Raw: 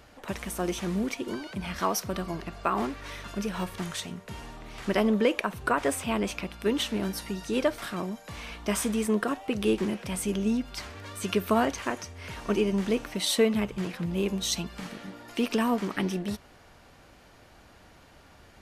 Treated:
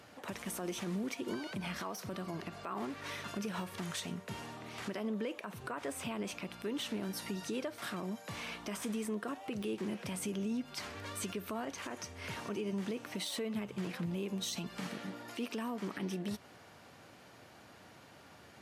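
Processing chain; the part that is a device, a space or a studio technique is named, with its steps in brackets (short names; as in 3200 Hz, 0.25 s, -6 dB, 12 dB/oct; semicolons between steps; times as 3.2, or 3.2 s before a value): podcast mastering chain (HPF 99 Hz 24 dB/oct; de-esser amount 60%; compressor 3:1, threshold -33 dBFS, peak gain reduction 12 dB; limiter -27.5 dBFS, peak gain reduction 10.5 dB; gain -1 dB; MP3 96 kbps 48000 Hz)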